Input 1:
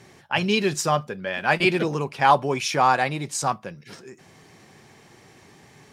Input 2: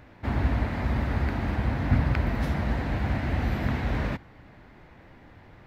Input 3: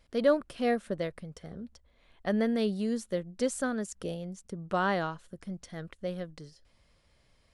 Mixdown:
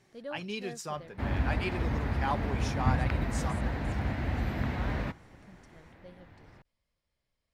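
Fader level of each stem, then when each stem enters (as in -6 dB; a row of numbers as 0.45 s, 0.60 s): -15.5 dB, -4.5 dB, -17.0 dB; 0.00 s, 0.95 s, 0.00 s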